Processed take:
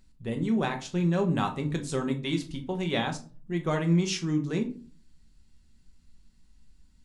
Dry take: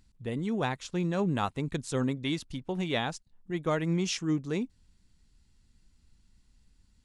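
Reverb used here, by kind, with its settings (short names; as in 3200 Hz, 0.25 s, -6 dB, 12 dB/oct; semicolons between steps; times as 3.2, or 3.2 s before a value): shoebox room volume 240 m³, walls furnished, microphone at 1.1 m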